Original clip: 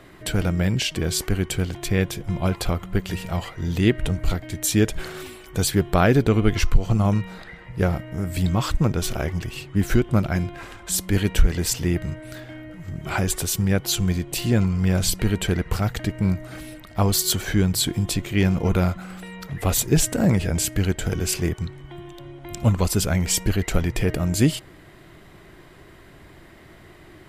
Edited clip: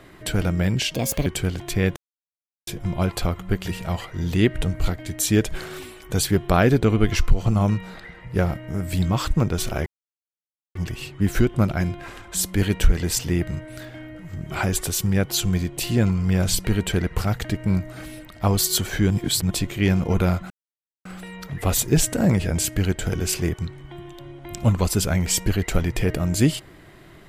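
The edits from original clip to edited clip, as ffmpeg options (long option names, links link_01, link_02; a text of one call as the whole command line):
ffmpeg -i in.wav -filter_complex "[0:a]asplit=8[link_01][link_02][link_03][link_04][link_05][link_06][link_07][link_08];[link_01]atrim=end=0.944[link_09];[link_02]atrim=start=0.94:end=1.41,asetpts=PTS-STARTPTS,asetrate=64386,aresample=44100[link_10];[link_03]atrim=start=1.406:end=2.11,asetpts=PTS-STARTPTS,afade=type=out:start_time=0.7:duration=0.004:curve=hsin,apad=pad_dur=0.71[link_11];[link_04]atrim=start=2.11:end=9.3,asetpts=PTS-STARTPTS,afade=type=in:duration=0.004:curve=hsin,afade=type=out:start_time=7.186:duration=0.004:curve=hsin,apad=pad_dur=0.89[link_12];[link_05]atrim=start=9.3:end=17.652,asetpts=PTS-STARTPTS,afade=type=in:duration=0.004:curve=hsin[link_13];[link_06]atrim=start=17.648:end=18.052,asetpts=PTS-STARTPTS,areverse[link_14];[link_07]atrim=start=18.048:end=19.05,asetpts=PTS-STARTPTS,afade=type=out:start_time=0.998:duration=0.004:curve=hsin,apad=pad_dur=0.55[link_15];[link_08]atrim=start=19.05,asetpts=PTS-STARTPTS,afade=type=in:duration=0.004:curve=hsin[link_16];[link_09][link_10]acrossfade=duration=0.004:curve1=hsin:curve2=hsin[link_17];[link_11][link_12][link_13]concat=n=3:v=0:a=1[link_18];[link_17][link_18]acrossfade=duration=0.004:curve1=hsin:curve2=hsin[link_19];[link_19][link_14]acrossfade=duration=0.004:curve1=hsin:curve2=hsin[link_20];[link_15][link_16]concat=n=2:v=0:a=1[link_21];[link_20][link_21]acrossfade=duration=0.004:curve1=hsin:curve2=hsin" out.wav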